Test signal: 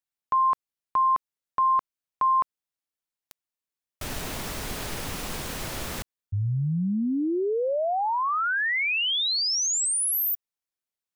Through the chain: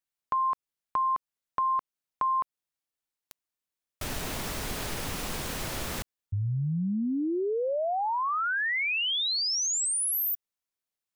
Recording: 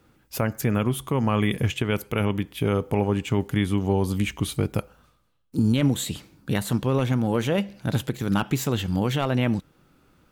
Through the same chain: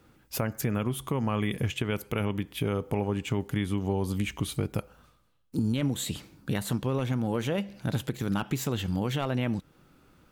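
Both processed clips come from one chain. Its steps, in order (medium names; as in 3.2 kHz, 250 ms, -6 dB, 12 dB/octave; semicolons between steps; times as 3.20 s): compression 2:1, threshold -29 dBFS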